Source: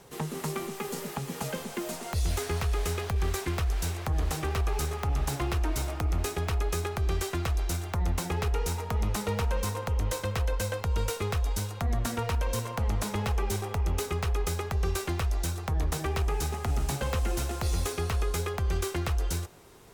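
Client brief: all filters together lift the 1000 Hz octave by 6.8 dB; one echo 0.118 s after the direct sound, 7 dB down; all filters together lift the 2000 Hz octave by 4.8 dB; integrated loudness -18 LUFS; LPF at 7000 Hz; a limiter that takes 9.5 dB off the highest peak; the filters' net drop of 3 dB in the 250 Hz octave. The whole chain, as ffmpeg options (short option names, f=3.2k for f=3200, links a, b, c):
-af "lowpass=7k,equalizer=f=250:t=o:g=-5.5,equalizer=f=1k:t=o:g=8,equalizer=f=2k:t=o:g=3.5,alimiter=limit=-23.5dB:level=0:latency=1,aecho=1:1:118:0.447,volume=14dB"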